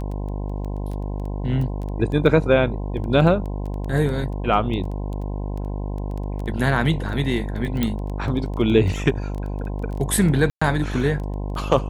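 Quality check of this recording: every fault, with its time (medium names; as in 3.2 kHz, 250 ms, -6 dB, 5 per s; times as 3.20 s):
buzz 50 Hz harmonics 21 -27 dBFS
crackle 12 per s -28 dBFS
7.83 s: pop -8 dBFS
10.50–10.62 s: dropout 115 ms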